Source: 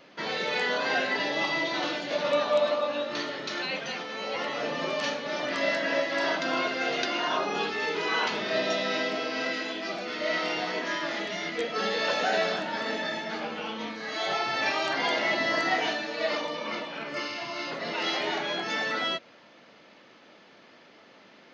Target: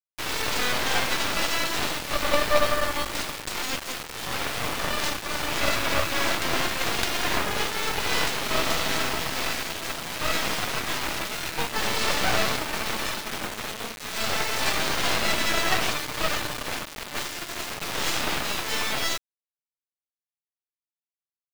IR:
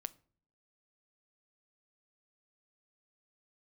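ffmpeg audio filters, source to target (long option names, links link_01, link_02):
-af "aeval=exprs='0.2*(cos(1*acos(clip(val(0)/0.2,-1,1)))-cos(1*PI/2))+0.0562*(cos(3*acos(clip(val(0)/0.2,-1,1)))-cos(3*PI/2))+0.0355*(cos(4*acos(clip(val(0)/0.2,-1,1)))-cos(4*PI/2))+0.0178*(cos(8*acos(clip(val(0)/0.2,-1,1)))-cos(8*PI/2))':channel_layout=same,acrusher=bits=5:mix=0:aa=0.000001,volume=5dB"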